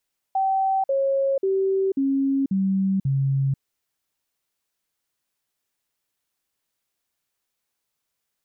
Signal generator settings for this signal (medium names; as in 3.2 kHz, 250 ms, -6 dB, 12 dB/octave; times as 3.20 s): stepped sine 771 Hz down, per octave 2, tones 6, 0.49 s, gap 0.05 s -18.5 dBFS